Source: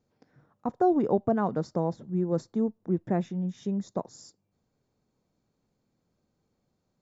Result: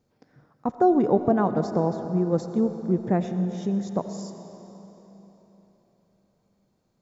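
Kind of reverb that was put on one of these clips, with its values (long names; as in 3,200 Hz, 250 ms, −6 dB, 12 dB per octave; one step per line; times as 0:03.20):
comb and all-pass reverb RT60 3.8 s, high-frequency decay 0.9×, pre-delay 50 ms, DRR 8.5 dB
level +4 dB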